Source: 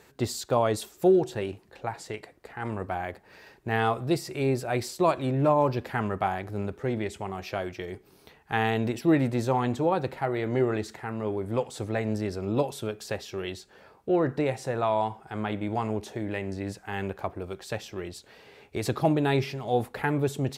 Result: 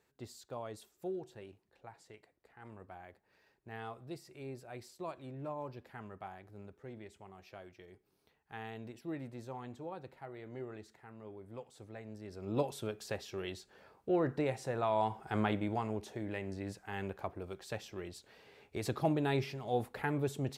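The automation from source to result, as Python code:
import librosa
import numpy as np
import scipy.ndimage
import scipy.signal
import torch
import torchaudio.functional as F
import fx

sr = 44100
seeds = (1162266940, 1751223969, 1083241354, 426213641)

y = fx.gain(x, sr, db=fx.line((12.19, -19.5), (12.59, -7.0), (14.9, -7.0), (15.34, 0.5), (15.85, -8.0)))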